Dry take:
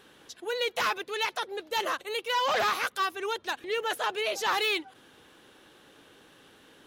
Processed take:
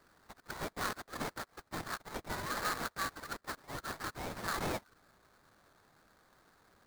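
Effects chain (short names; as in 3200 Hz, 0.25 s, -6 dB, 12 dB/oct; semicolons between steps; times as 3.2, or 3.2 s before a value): steep high-pass 1100 Hz 96 dB/oct; sample-rate reducer 2900 Hz, jitter 20%; gain -7 dB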